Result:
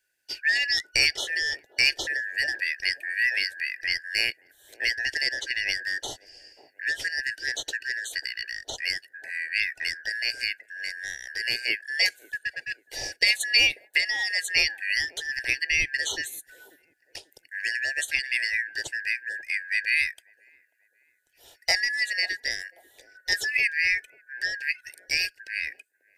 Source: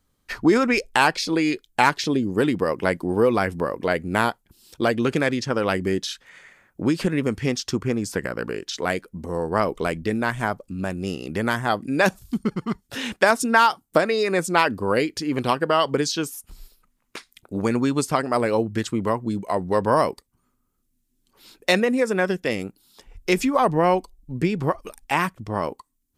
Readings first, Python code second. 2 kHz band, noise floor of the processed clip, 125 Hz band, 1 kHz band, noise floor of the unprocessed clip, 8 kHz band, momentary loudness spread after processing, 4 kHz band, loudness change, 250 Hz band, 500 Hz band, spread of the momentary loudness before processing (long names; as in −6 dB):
+3.0 dB, −68 dBFS, below −20 dB, −25.5 dB, −71 dBFS, 0.0 dB, 12 LU, +5.0 dB, −3.0 dB, −30.5 dB, −24.0 dB, 10 LU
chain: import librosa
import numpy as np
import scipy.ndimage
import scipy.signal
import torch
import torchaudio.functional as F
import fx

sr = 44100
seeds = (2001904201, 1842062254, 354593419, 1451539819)

y = fx.band_shuffle(x, sr, order='3142')
y = fx.fixed_phaser(y, sr, hz=480.0, stages=4)
y = fx.echo_wet_bandpass(y, sr, ms=540, feedback_pct=37, hz=430.0, wet_db=-14.0)
y = y * librosa.db_to_amplitude(-1.5)